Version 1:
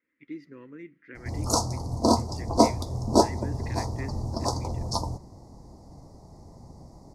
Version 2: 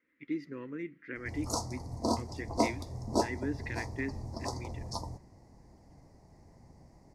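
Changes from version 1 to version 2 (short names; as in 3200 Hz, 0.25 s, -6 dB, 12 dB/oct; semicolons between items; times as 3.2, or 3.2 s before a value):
speech +4.0 dB; background -9.5 dB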